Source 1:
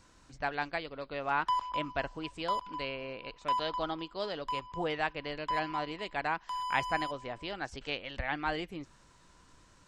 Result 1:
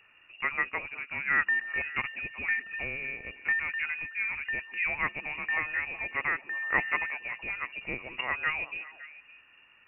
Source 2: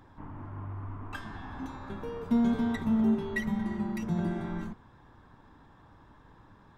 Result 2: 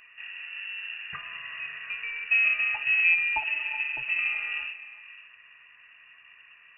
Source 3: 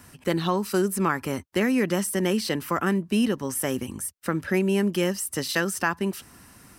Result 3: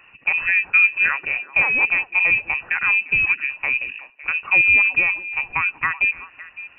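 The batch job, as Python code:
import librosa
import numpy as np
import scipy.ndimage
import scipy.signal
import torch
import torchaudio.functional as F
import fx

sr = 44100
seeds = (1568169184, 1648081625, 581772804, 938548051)

y = fx.cheby_harmonics(x, sr, harmonics=(5, 7), levels_db=(-17, -20), full_scale_db=-9.0)
y = fx.small_body(y, sr, hz=(390.0, 880.0), ring_ms=45, db=10)
y = fx.freq_invert(y, sr, carrier_hz=2800)
y = fx.echo_stepped(y, sr, ms=187, hz=300.0, octaves=1.4, feedback_pct=70, wet_db=-10.0)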